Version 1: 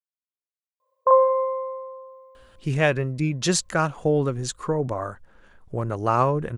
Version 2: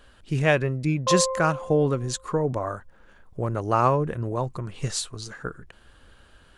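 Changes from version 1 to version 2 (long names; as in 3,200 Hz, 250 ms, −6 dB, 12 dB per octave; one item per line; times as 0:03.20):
speech: entry −2.35 s
background −7.5 dB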